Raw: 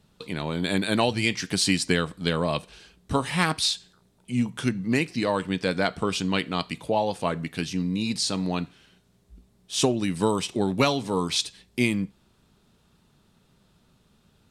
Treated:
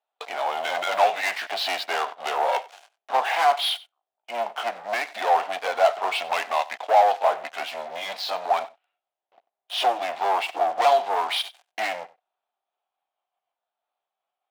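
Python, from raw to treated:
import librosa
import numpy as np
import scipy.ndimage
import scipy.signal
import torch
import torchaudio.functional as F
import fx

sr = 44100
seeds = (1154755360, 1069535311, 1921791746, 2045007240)

y = fx.pitch_ramps(x, sr, semitones=-3.0, every_ms=1356)
y = scipy.signal.sosfilt(scipy.signal.butter(4, 3500.0, 'lowpass', fs=sr, output='sos'), y)
y = fx.leveller(y, sr, passes=5)
y = fx.ladder_highpass(y, sr, hz=670.0, resonance_pct=75)
y = y + 10.0 ** (-20.5 / 20.0) * np.pad(y, (int(93 * sr / 1000.0), 0))[:len(y)]
y = F.gain(torch.from_numpy(y), 1.5).numpy()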